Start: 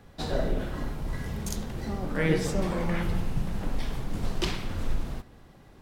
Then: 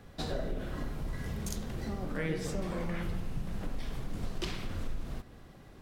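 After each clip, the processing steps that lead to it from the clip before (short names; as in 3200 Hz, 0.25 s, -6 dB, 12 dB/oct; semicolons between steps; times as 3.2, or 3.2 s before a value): bell 880 Hz -4.5 dB 0.21 oct; compressor 2.5:1, threshold -34 dBFS, peak gain reduction 10.5 dB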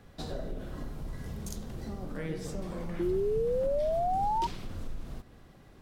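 dynamic EQ 2100 Hz, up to -5 dB, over -56 dBFS, Q 0.9; painted sound rise, 2.99–4.47, 340–950 Hz -27 dBFS; gain -2 dB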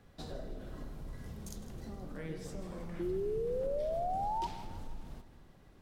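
split-band echo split 420 Hz, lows 0.251 s, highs 0.158 s, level -14 dB; gain -6 dB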